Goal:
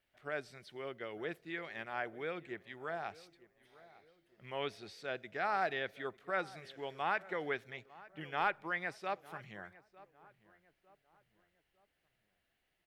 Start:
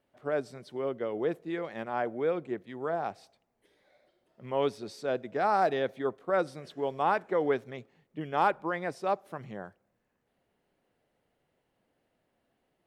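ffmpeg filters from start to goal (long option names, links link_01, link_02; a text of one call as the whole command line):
ffmpeg -i in.wav -filter_complex "[0:a]equalizer=frequency=125:width_type=o:width=1:gain=-8,equalizer=frequency=250:width_type=o:width=1:gain=-12,equalizer=frequency=500:width_type=o:width=1:gain=-10,equalizer=frequency=1000:width_type=o:width=1:gain=-9,equalizer=frequency=2000:width_type=o:width=1:gain=3,equalizer=frequency=8000:width_type=o:width=1:gain=-4,asplit=2[link_01][link_02];[link_02]adelay=903,lowpass=frequency=1500:poles=1,volume=-19dB,asplit=2[link_03][link_04];[link_04]adelay=903,lowpass=frequency=1500:poles=1,volume=0.43,asplit=2[link_05][link_06];[link_06]adelay=903,lowpass=frequency=1500:poles=1,volume=0.43[link_07];[link_01][link_03][link_05][link_07]amix=inputs=4:normalize=0,acrossover=split=3600[link_08][link_09];[link_09]acompressor=threshold=-59dB:ratio=4:attack=1:release=60[link_10];[link_08][link_10]amix=inputs=2:normalize=0,volume=1.5dB" out.wav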